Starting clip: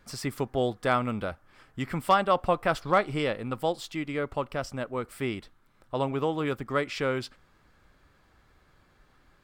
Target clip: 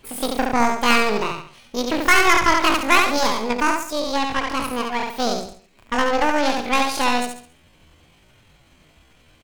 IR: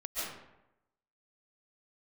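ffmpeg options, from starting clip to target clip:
-af "aeval=exprs='0.282*(cos(1*acos(clip(val(0)/0.282,-1,1)))-cos(1*PI/2))+0.00447*(cos(2*acos(clip(val(0)/0.282,-1,1)))-cos(2*PI/2))+0.002*(cos(4*acos(clip(val(0)/0.282,-1,1)))-cos(4*PI/2))+0.00178*(cos(5*acos(clip(val(0)/0.282,-1,1)))-cos(5*PI/2))+0.0501*(cos(6*acos(clip(val(0)/0.282,-1,1)))-cos(6*PI/2))':c=same,aecho=1:1:70|140|210|280|350:0.668|0.254|0.0965|0.0367|0.0139,asetrate=83250,aresample=44100,atempo=0.529732,volume=6dB"

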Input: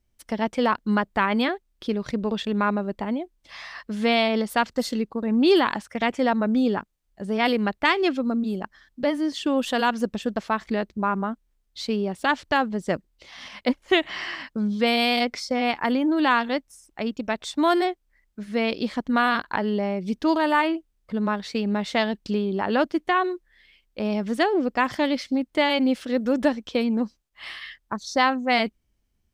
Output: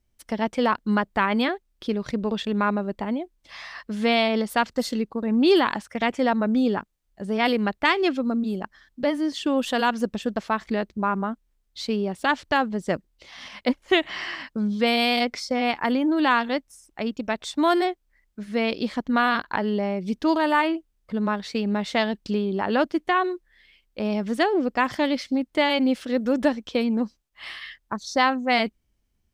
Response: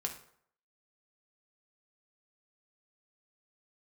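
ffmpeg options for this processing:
-filter_complex "[0:a]asettb=1/sr,asplit=3[a][b][c];[a]atrim=end=19.024[d];[b]atrim=start=19.02:end=19.55,asetpts=PTS-STARTPTS,afade=t=in:d=0.004:c=qsin,afade=t=out:st=0.526:d=0.004:c=qsin,equalizer=f=9.1k:w=6.5:g=-14.5[e];[c]atrim=start=19.546[f];[d][e]acrossfade=d=0.004:c1=hsin:c2=qsin[g];[g][f]acrossfade=d=0.004:c1=qsin:c2=hsin"

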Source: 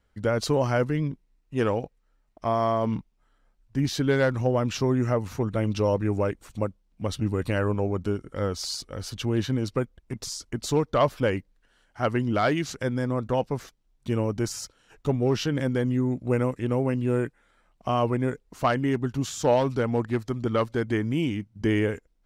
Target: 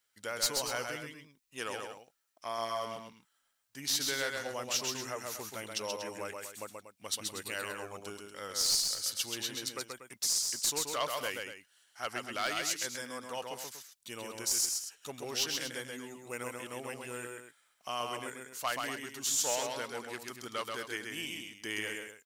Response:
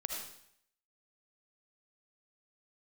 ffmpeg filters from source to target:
-af "aderivative,aeval=exprs='clip(val(0),-1,0.0266)':c=same,aecho=1:1:131.2|239.1:0.631|0.282,volume=6.5dB"

